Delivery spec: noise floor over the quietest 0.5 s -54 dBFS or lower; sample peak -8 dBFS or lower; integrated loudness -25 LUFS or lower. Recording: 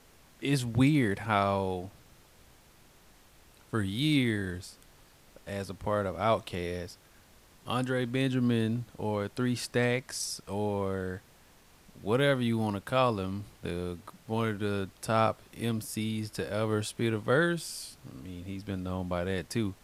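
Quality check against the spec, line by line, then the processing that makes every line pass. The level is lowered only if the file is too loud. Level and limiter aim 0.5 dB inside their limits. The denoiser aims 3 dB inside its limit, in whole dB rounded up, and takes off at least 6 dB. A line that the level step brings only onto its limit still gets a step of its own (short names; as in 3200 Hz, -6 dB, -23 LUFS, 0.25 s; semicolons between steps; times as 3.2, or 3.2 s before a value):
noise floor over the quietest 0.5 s -59 dBFS: OK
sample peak -11.5 dBFS: OK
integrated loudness -31.0 LUFS: OK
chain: none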